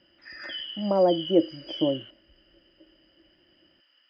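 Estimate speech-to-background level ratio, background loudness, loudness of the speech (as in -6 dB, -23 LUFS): 11.5 dB, -37.0 LUFS, -25.5 LUFS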